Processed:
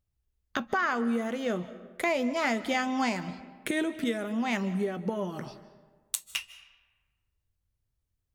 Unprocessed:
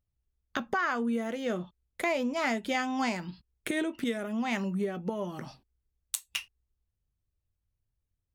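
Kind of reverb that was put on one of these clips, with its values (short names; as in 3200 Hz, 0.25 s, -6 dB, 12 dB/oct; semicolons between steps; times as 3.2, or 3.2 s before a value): digital reverb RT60 1.4 s, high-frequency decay 0.6×, pre-delay 0.115 s, DRR 15 dB; gain +1.5 dB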